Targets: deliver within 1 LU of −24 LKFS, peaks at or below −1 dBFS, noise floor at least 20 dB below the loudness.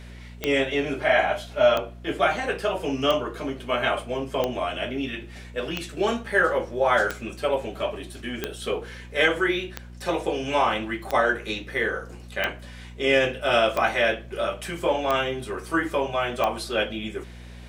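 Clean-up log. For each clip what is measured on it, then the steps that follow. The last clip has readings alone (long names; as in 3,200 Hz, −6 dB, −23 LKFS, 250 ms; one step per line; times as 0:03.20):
number of clicks 13; mains hum 60 Hz; hum harmonics up to 240 Hz; level of the hum −40 dBFS; integrated loudness −25.0 LKFS; sample peak −5.0 dBFS; target loudness −24.0 LKFS
→ click removal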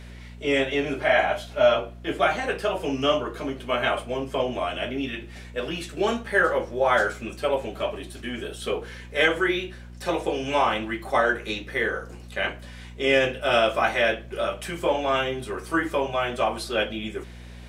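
number of clicks 0; mains hum 60 Hz; hum harmonics up to 240 Hz; level of the hum −40 dBFS
→ hum removal 60 Hz, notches 4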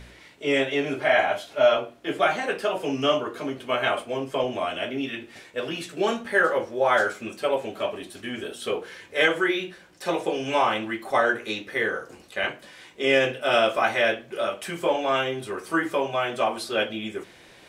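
mains hum none found; integrated loudness −25.0 LKFS; sample peak −4.5 dBFS; target loudness −24.0 LKFS
→ level +1 dB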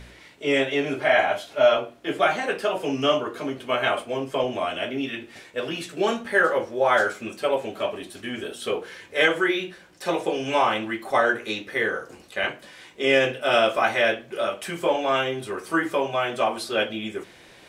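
integrated loudness −24.0 LKFS; sample peak −3.5 dBFS; background noise floor −50 dBFS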